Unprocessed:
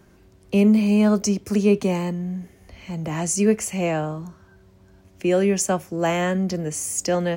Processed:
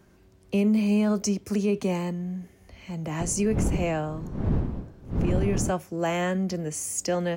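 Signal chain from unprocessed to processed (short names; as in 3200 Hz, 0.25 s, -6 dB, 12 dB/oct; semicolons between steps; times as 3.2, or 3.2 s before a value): 3.2–5.7 wind noise 190 Hz -18 dBFS; limiter -12 dBFS, peak gain reduction 10.5 dB; gain -4 dB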